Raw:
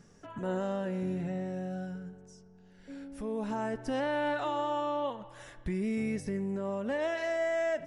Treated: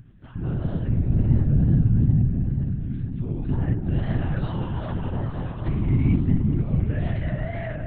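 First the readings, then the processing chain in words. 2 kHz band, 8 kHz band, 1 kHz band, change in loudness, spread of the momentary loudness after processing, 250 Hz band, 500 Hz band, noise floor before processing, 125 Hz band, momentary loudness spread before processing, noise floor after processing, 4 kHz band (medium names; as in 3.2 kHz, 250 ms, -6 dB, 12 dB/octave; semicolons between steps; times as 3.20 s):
-2.5 dB, under -25 dB, -5.0 dB, +9.5 dB, 10 LU, +9.0 dB, -4.5 dB, -58 dBFS, +21.5 dB, 14 LU, -34 dBFS, no reading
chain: bass shelf 330 Hz +9 dB; delay with an opening low-pass 222 ms, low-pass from 400 Hz, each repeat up 1 oct, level 0 dB; LPC vocoder at 8 kHz whisper; wow and flutter 91 cents; graphic EQ 125/500/1000 Hz +9/-10/-6 dB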